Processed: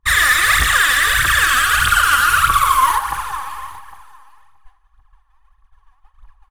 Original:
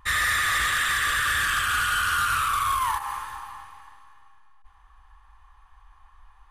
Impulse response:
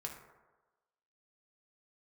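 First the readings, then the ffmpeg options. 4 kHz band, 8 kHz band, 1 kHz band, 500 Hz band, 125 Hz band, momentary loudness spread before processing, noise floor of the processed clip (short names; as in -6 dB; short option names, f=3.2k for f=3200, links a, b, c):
+9.5 dB, +10.5 dB, +10.0 dB, +11.0 dB, +10.5 dB, 12 LU, -59 dBFS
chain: -filter_complex "[0:a]agate=range=-33dB:threshold=-41dB:ratio=3:detection=peak,aphaser=in_gain=1:out_gain=1:delay=4.1:decay=0.74:speed=1.6:type=triangular,aecho=1:1:806:0.1,asplit=2[a][b];[1:a]atrim=start_sample=2205,highshelf=f=11k:g=10[c];[b][c]afir=irnorm=-1:irlink=0,volume=-3dB[d];[a][d]amix=inputs=2:normalize=0,volume=3dB"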